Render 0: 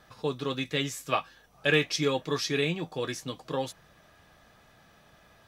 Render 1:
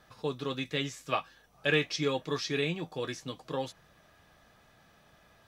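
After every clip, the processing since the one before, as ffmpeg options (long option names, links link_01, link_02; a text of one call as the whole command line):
ffmpeg -i in.wav -filter_complex "[0:a]acrossover=split=7000[link_01][link_02];[link_02]acompressor=threshold=-56dB:ratio=4:attack=1:release=60[link_03];[link_01][link_03]amix=inputs=2:normalize=0,volume=-3dB" out.wav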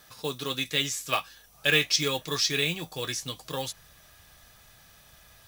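ffmpeg -i in.wav -af "acrusher=bits=8:mode=log:mix=0:aa=0.000001,crystalizer=i=5:c=0,asubboost=boost=3.5:cutoff=120" out.wav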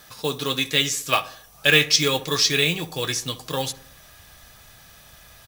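ffmpeg -i in.wav -filter_complex "[0:a]asplit=2[link_01][link_02];[link_02]adelay=67,lowpass=frequency=1600:poles=1,volume=-15dB,asplit=2[link_03][link_04];[link_04]adelay=67,lowpass=frequency=1600:poles=1,volume=0.53,asplit=2[link_05][link_06];[link_06]adelay=67,lowpass=frequency=1600:poles=1,volume=0.53,asplit=2[link_07][link_08];[link_08]adelay=67,lowpass=frequency=1600:poles=1,volume=0.53,asplit=2[link_09][link_10];[link_10]adelay=67,lowpass=frequency=1600:poles=1,volume=0.53[link_11];[link_01][link_03][link_05][link_07][link_09][link_11]amix=inputs=6:normalize=0,volume=6.5dB" out.wav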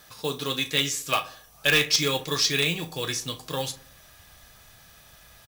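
ffmpeg -i in.wav -filter_complex "[0:a]asplit=2[link_01][link_02];[link_02]aeval=exprs='(mod(2*val(0)+1,2)-1)/2':channel_layout=same,volume=-5.5dB[link_03];[link_01][link_03]amix=inputs=2:normalize=0,asplit=2[link_04][link_05];[link_05]adelay=36,volume=-12.5dB[link_06];[link_04][link_06]amix=inputs=2:normalize=0,volume=-7.5dB" out.wav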